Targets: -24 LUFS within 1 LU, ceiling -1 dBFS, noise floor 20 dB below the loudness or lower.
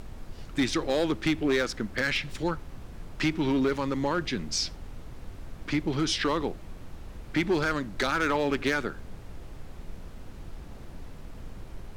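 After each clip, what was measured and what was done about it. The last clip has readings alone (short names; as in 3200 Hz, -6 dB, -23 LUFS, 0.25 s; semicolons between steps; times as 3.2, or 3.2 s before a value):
clipped 0.8%; flat tops at -19.0 dBFS; noise floor -44 dBFS; noise floor target -49 dBFS; loudness -28.5 LUFS; peak -19.0 dBFS; loudness target -24.0 LUFS
-> clip repair -19 dBFS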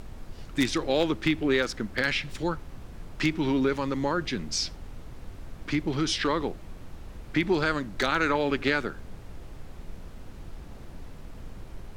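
clipped 0.0%; noise floor -44 dBFS; noise floor target -48 dBFS
-> noise print and reduce 6 dB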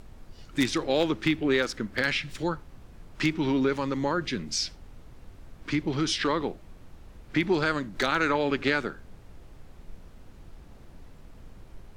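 noise floor -50 dBFS; loudness -27.5 LUFS; peak -10.0 dBFS; loudness target -24.0 LUFS
-> gain +3.5 dB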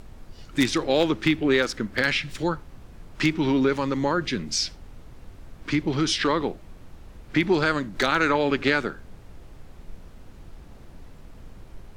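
loudness -24.0 LUFS; peak -6.5 dBFS; noise floor -46 dBFS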